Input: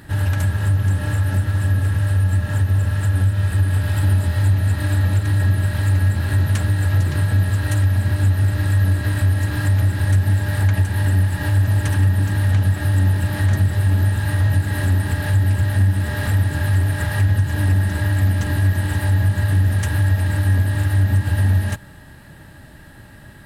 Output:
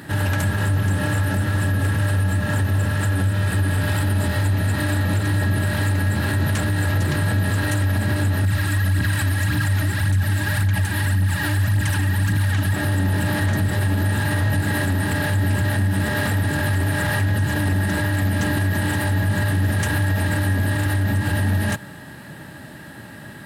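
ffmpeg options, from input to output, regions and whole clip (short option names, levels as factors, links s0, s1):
-filter_complex "[0:a]asettb=1/sr,asplit=3[s0][s1][s2];[s0]atrim=end=8.454[s3];[s1]atrim=start=8.45:end=12.73,asetpts=PTS-STARTPTS,afade=t=in:d=0.004:c=qsin,afade=t=out:st=4.276:d=0.004:c=qsin,equalizer=f=480:t=o:w=1.5:g=-10,aphaser=in_gain=1:out_gain=1:delay=3.4:decay=0.5:speed=1.8:type=triangular[s4];[s2]atrim=start=12.726[s5];[s3][s4]acrossfade=d=0.004:c1=hsin:c2=qsin[s6];[s6][s5]acrossfade=d=0.004:c1=qsin:c2=hsin,highpass=180,bass=f=250:g=4,treble=f=4000:g=-1,alimiter=limit=0.112:level=0:latency=1:release=16,volume=2"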